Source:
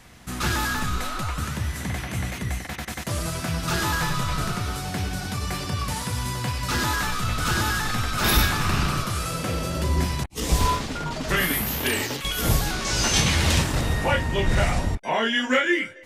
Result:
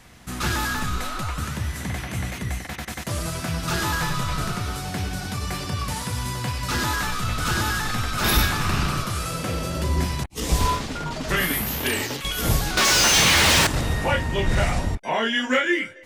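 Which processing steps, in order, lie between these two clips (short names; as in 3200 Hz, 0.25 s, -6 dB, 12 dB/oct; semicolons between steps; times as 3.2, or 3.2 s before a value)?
12.77–13.67 overdrive pedal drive 31 dB, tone 6500 Hz, clips at -10.5 dBFS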